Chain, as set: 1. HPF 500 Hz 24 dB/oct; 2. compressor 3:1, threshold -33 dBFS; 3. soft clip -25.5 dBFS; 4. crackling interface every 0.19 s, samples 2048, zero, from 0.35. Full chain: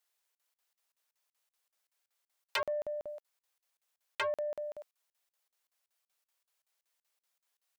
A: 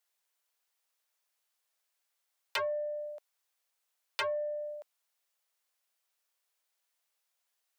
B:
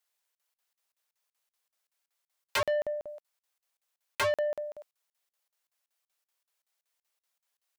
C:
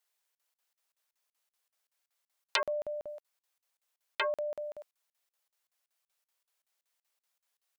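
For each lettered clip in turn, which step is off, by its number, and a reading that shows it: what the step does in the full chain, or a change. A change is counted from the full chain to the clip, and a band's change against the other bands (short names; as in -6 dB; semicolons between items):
4, momentary loudness spread change -1 LU; 2, mean gain reduction 7.0 dB; 3, distortion -13 dB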